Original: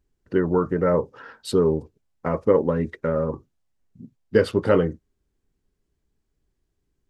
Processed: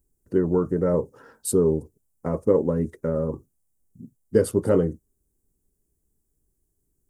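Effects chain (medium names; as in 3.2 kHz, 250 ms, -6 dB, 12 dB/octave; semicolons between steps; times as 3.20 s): FFT filter 380 Hz 0 dB, 2.7 kHz -14 dB, 4.2 kHz -10 dB, 9 kHz +14 dB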